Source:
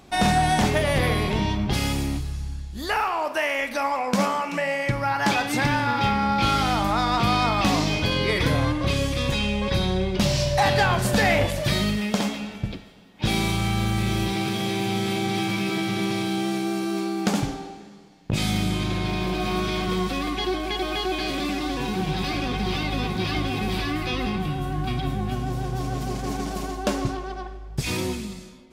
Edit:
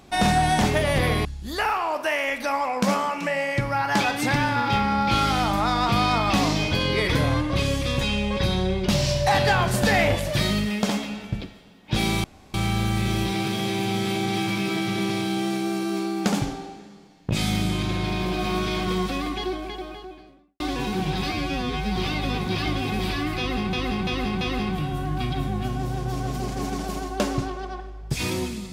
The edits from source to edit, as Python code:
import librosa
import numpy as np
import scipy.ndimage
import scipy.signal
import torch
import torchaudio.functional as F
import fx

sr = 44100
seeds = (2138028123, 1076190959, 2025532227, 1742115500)

y = fx.studio_fade_out(x, sr, start_s=19.99, length_s=1.62)
y = fx.edit(y, sr, fx.cut(start_s=1.25, length_s=1.31),
    fx.insert_room_tone(at_s=13.55, length_s=0.3),
    fx.stretch_span(start_s=22.33, length_s=0.32, factor=2.0),
    fx.repeat(start_s=24.08, length_s=0.34, count=4), tone=tone)